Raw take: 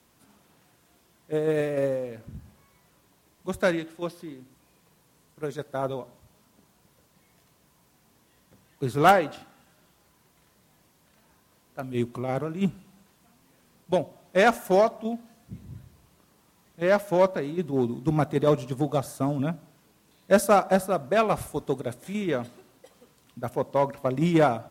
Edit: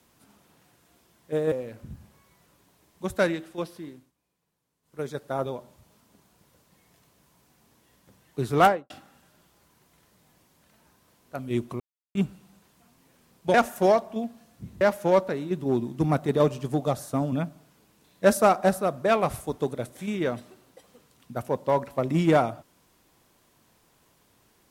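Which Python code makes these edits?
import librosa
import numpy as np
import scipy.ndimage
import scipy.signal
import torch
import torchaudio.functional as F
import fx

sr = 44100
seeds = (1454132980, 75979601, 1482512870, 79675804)

y = fx.studio_fade_out(x, sr, start_s=9.04, length_s=0.3)
y = fx.edit(y, sr, fx.cut(start_s=1.52, length_s=0.44),
    fx.fade_down_up(start_s=4.35, length_s=1.12, db=-17.5, fade_s=0.21),
    fx.silence(start_s=12.24, length_s=0.35),
    fx.cut(start_s=13.98, length_s=0.45),
    fx.cut(start_s=15.7, length_s=1.18), tone=tone)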